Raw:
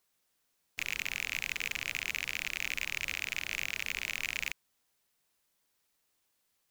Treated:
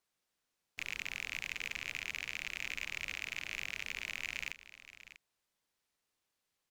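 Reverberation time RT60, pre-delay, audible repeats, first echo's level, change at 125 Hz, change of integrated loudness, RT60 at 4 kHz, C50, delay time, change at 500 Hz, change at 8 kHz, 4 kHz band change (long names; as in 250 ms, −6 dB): no reverb audible, no reverb audible, 1, −14.5 dB, −4.5 dB, −5.0 dB, no reverb audible, no reverb audible, 643 ms, −4.5 dB, −7.5 dB, −5.0 dB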